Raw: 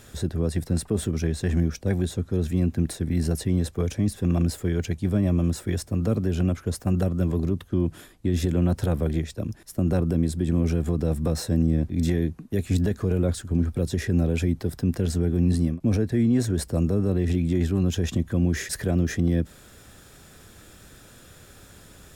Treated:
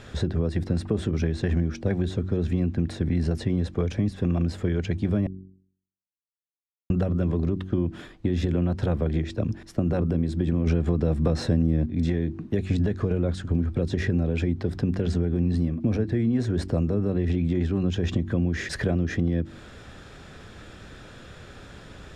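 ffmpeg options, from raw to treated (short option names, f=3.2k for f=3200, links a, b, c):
-filter_complex "[0:a]asplit=5[a][b][c][d][e];[a]atrim=end=5.27,asetpts=PTS-STARTPTS,afade=t=out:st=5.266:d=0.004:c=hsin[f];[b]atrim=start=5.27:end=6.9,asetpts=PTS-STARTPTS,volume=0[g];[c]atrim=start=6.9:end=10.672,asetpts=PTS-STARTPTS,afade=t=in:d=0.004:c=hsin[h];[d]atrim=start=10.668:end=11.862,asetpts=PTS-STARTPTS,volume=8dB[i];[e]atrim=start=11.858[j];[f][g][h]concat=n=3:v=0:a=1[k];[k][i]acrossfade=d=0.004:c1=hsin:c2=hsin[l];[l][j]acrossfade=d=0.004:c1=hsin:c2=hsin,lowpass=3.8k,bandreject=f=47.01:t=h:w=4,bandreject=f=94.02:t=h:w=4,bandreject=f=141.03:t=h:w=4,bandreject=f=188.04:t=h:w=4,bandreject=f=235.05:t=h:w=4,bandreject=f=282.06:t=h:w=4,bandreject=f=329.07:t=h:w=4,bandreject=f=376.08:t=h:w=4,acompressor=threshold=-27dB:ratio=4,volume=6dB"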